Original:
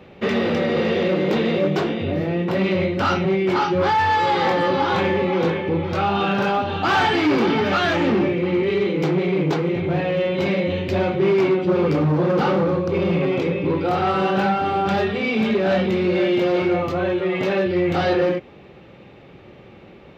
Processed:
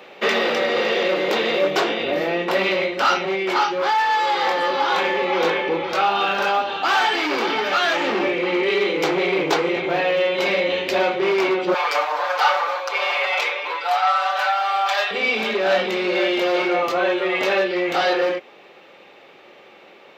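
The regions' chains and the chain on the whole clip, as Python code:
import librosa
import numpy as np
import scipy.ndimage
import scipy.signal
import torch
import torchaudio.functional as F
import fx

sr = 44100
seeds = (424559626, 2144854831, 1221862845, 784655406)

y = fx.chain(x, sr, fx.highpass(hz=690.0, slope=24),
    fx.comb(ms=6.8, depth=0.91), at=(11.74, 15.11))
y = scipy.signal.sosfilt(scipy.signal.butter(2, 540.0, 'highpass', fs=sr, output='sos'), y)
y = fx.high_shelf(y, sr, hz=4200.0, db=5.5)
y = fx.rider(y, sr, range_db=4, speed_s=0.5)
y = y * librosa.db_to_amplitude(3.5)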